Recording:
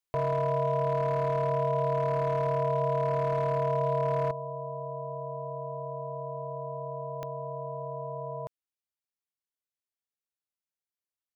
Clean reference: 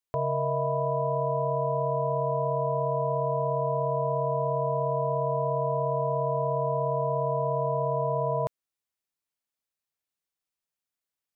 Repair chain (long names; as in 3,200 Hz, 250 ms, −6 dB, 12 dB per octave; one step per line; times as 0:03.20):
clipped peaks rebuilt −22 dBFS
click removal
level correction +9.5 dB, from 0:04.31